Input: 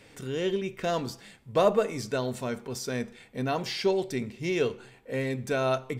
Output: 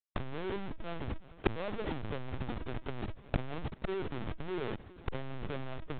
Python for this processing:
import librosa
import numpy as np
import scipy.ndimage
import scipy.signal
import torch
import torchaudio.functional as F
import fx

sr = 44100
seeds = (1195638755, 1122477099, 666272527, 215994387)

p1 = scipy.signal.sosfilt(scipy.signal.butter(2, 1600.0, 'lowpass', fs=sr, output='sos'), x)
p2 = fx.tilt_eq(p1, sr, slope=-4.5)
p3 = fx.notch(p2, sr, hz=1000.0, q=18.0)
p4 = fx.rotary_switch(p3, sr, hz=6.3, then_hz=1.2, switch_at_s=0.38)
p5 = fx.schmitt(p4, sr, flips_db=-35.0)
p6 = fx.gate_flip(p5, sr, shuts_db=-37.0, range_db=-26)
p7 = p6 + fx.echo_heads(p6, sr, ms=191, heads='second and third', feedback_pct=63, wet_db=-23, dry=0)
p8 = fx.lpc_vocoder(p7, sr, seeds[0], excitation='pitch_kept', order=16)
p9 = fx.transformer_sat(p8, sr, knee_hz=330.0)
y = F.gain(torch.from_numpy(p9), 16.5).numpy()